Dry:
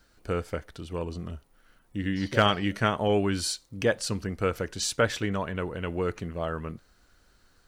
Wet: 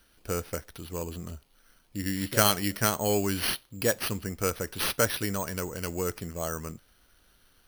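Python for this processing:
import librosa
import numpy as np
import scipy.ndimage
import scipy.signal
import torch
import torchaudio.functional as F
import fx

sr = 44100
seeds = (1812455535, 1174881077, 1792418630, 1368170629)

y = np.repeat(x[::6], 6)[:len(x)]
y = fx.high_shelf(y, sr, hz=5000.0, db=11.0)
y = F.gain(torch.from_numpy(y), -2.5).numpy()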